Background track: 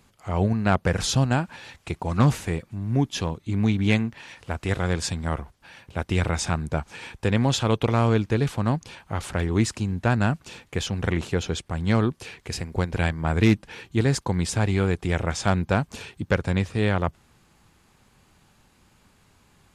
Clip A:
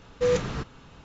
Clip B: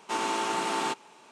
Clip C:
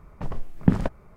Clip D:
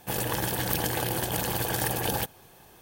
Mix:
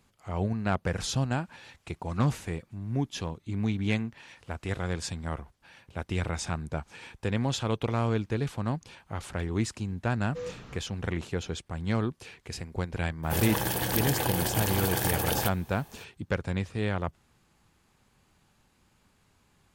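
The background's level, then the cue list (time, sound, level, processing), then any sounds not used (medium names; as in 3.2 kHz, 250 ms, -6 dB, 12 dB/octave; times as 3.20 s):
background track -7 dB
10.14 s: add A -14.5 dB
13.23 s: add D -0.5 dB
not used: B, C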